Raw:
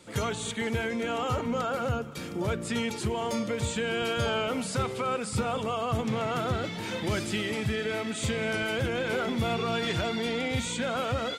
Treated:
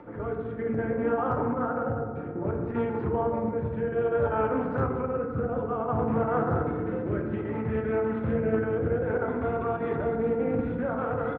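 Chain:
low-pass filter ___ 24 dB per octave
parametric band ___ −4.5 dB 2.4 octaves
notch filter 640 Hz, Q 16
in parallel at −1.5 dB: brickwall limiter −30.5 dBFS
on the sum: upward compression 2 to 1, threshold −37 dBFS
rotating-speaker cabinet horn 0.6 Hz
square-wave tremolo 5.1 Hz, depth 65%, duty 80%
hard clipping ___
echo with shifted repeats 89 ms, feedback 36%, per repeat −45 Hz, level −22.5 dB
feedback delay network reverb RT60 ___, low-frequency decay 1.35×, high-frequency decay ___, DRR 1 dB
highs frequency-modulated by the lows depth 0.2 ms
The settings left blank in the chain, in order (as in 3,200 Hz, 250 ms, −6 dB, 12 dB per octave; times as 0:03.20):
1,400 Hz, 82 Hz, −19.5 dBFS, 1.6 s, 0.35×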